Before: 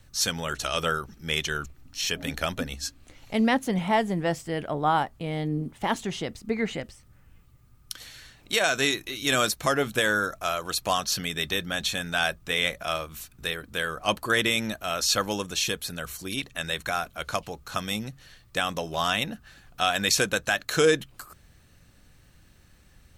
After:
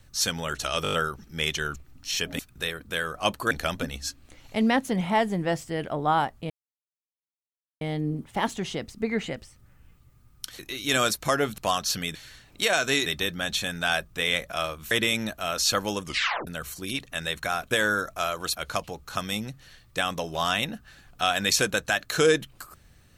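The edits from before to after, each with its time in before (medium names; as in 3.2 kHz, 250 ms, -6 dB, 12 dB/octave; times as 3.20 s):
0.83 s: stutter 0.02 s, 6 plays
5.28 s: insert silence 1.31 s
8.06–8.97 s: move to 11.37 s
9.96–10.80 s: move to 17.14 s
13.22–14.34 s: move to 2.29 s
15.46 s: tape stop 0.44 s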